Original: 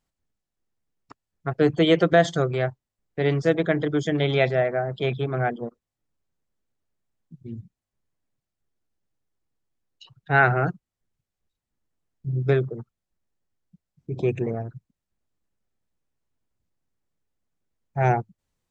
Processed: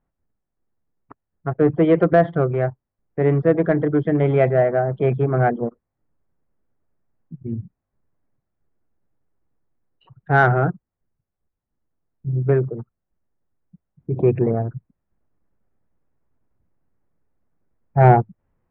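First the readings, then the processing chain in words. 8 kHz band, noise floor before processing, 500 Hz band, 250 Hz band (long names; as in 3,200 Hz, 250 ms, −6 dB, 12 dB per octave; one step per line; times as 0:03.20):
can't be measured, below −85 dBFS, +4.5 dB, +5.0 dB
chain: Bessel low-pass filter 1,300 Hz, order 6
in parallel at −6 dB: soft clipping −16.5 dBFS, distortion −13 dB
on the sum: speech leveller 2 s
level +2.5 dB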